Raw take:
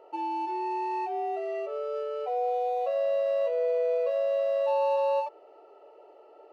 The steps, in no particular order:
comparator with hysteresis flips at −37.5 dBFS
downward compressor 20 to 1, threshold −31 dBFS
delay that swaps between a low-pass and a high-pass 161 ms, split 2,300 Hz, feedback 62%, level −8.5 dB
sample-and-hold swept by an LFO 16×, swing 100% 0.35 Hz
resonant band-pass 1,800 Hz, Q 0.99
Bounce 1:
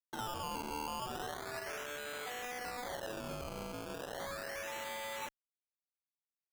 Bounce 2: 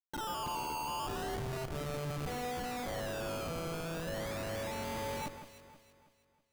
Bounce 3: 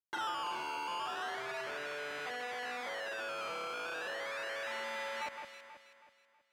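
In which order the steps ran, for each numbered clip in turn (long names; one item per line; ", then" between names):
downward compressor, then delay that swaps between a low-pass and a high-pass, then comparator with hysteresis, then resonant band-pass, then sample-and-hold swept by an LFO
resonant band-pass, then downward compressor, then comparator with hysteresis, then sample-and-hold swept by an LFO, then delay that swaps between a low-pass and a high-pass
comparator with hysteresis, then sample-and-hold swept by an LFO, then delay that swaps between a low-pass and a high-pass, then downward compressor, then resonant band-pass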